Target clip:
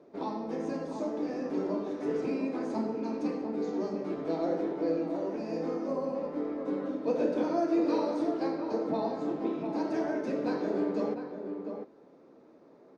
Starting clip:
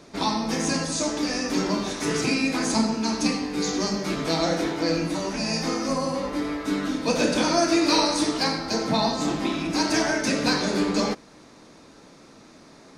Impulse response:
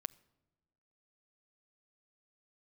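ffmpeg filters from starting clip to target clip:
-filter_complex "[0:a]bandpass=f=440:t=q:w=1.5:csg=0,asplit=2[a][b];[b]adelay=699.7,volume=-7dB,highshelf=f=4k:g=-15.7[c];[a][c]amix=inputs=2:normalize=0,volume=-3dB"

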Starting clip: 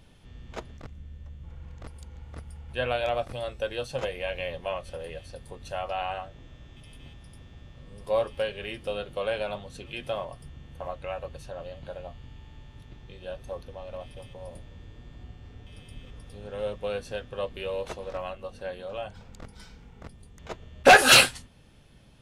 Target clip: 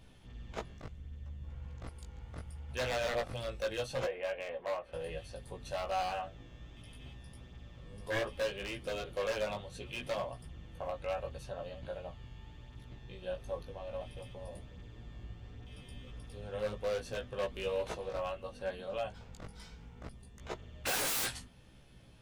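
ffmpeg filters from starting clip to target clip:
-filter_complex "[0:a]asettb=1/sr,asplit=3[a][b][c];[a]atrim=end=4.054[d];[b]atrim=start=4.05:end=4.93,asetpts=PTS-STARTPTS,afade=t=in:d=0.004:c=qsin,afade=t=out:st=0.876:d=0.004:c=qsin,acrossover=split=290 2400:gain=0.141 1 0.0708[e][f][g];[e][f][g]amix=inputs=3:normalize=0[h];[c]atrim=start=4.926[i];[d][h]acrossfade=d=0.004:c1=hsin:c2=qsin[j];[j][i]acrossfade=d=0.004:c1=qsin:c2=hsin,aeval=exprs='0.0531*(abs(mod(val(0)/0.0531+3,4)-2)-1)':c=same,flanger=delay=15.5:depth=3:speed=0.69"

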